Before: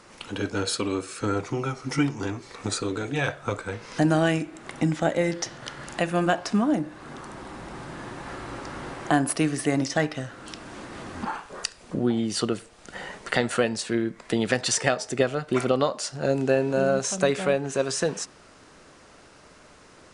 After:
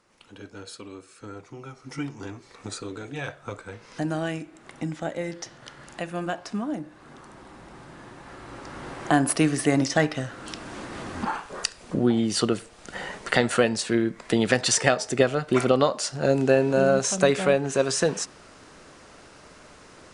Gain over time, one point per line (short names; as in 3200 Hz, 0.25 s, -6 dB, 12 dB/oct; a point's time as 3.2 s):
1.47 s -14 dB
2.16 s -7 dB
8.3 s -7 dB
9.29 s +2.5 dB